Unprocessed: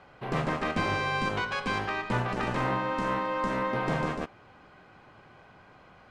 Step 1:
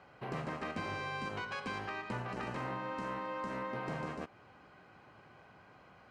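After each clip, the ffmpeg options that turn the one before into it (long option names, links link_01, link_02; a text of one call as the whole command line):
ffmpeg -i in.wav -af "highpass=60,bandreject=frequency=3500:width=13,acompressor=threshold=-34dB:ratio=2.5,volume=-4.5dB" out.wav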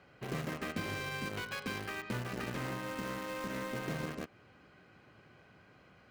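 ffmpeg -i in.wav -filter_complex "[0:a]asplit=2[link_01][link_02];[link_02]acrusher=bits=5:mix=0:aa=0.000001,volume=-9.5dB[link_03];[link_01][link_03]amix=inputs=2:normalize=0,equalizer=frequency=890:width_type=o:width=1:gain=-9,volume=1dB" out.wav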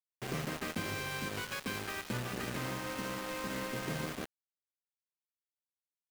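ffmpeg -i in.wav -af "acrusher=bits=6:mix=0:aa=0.000001" out.wav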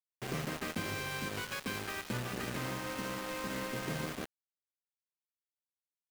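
ffmpeg -i in.wav -af anull out.wav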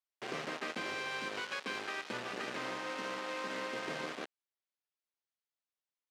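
ffmpeg -i in.wav -af "highpass=350,lowpass=5100,volume=1dB" out.wav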